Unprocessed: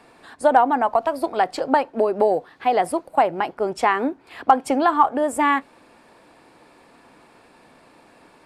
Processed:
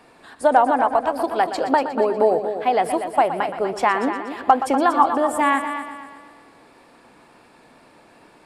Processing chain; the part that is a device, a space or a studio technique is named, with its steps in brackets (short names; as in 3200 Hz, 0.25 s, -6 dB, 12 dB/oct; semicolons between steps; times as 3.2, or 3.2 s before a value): multi-head tape echo (multi-head echo 0.12 s, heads first and second, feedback 45%, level -11.5 dB; wow and flutter 24 cents)